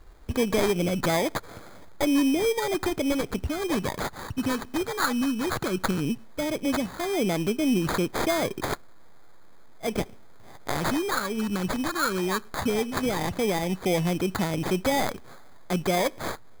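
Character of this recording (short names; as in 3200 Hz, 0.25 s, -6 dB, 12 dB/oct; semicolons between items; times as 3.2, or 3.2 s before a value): a quantiser's noise floor 10-bit, dither triangular; phasing stages 6, 0.15 Hz, lowest notch 660–2400 Hz; aliases and images of a low sample rate 2800 Hz, jitter 0%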